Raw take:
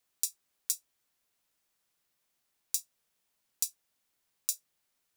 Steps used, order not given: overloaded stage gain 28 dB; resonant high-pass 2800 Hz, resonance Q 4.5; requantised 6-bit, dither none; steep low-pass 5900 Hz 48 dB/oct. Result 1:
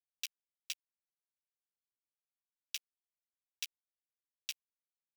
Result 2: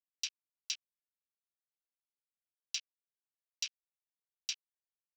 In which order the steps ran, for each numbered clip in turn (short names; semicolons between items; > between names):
overloaded stage > steep low-pass > requantised > resonant high-pass; requantised > steep low-pass > overloaded stage > resonant high-pass